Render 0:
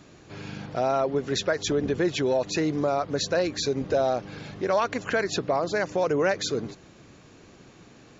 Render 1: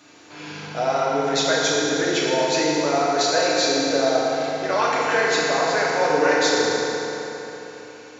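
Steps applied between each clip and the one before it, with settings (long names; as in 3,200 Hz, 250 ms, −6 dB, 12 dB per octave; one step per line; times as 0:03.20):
high-pass filter 930 Hz 6 dB per octave
feedback delay network reverb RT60 3.8 s, high-frequency decay 0.7×, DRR −7 dB
level +3 dB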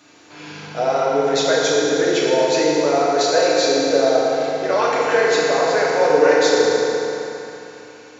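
dynamic equaliser 470 Hz, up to +7 dB, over −34 dBFS, Q 1.7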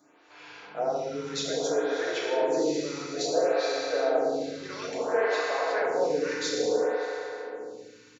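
slap from a distant wall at 100 metres, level −9 dB
phaser with staggered stages 0.59 Hz
level −8 dB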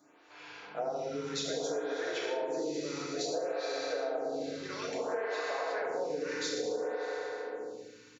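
downward compressor, threshold −29 dBFS, peak gain reduction 9.5 dB
level −2 dB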